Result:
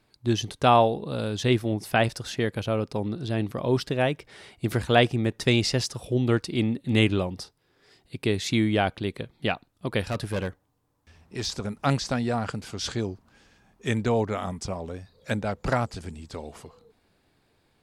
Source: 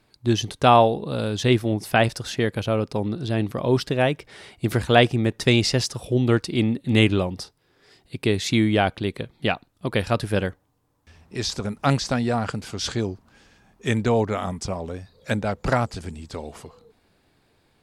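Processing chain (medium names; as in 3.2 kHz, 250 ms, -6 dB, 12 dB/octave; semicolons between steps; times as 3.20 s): 10.08–11.46 s: overload inside the chain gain 20 dB; trim -3.5 dB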